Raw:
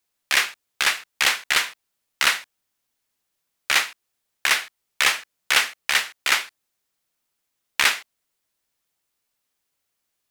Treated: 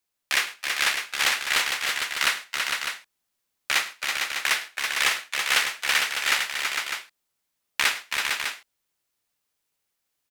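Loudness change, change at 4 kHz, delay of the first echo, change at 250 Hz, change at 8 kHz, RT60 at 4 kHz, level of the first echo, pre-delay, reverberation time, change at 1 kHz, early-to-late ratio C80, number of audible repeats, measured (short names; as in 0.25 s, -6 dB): -3.0 dB, -1.5 dB, 0.104 s, -1.5 dB, -1.5 dB, none, -18.0 dB, none, none, -1.5 dB, none, 4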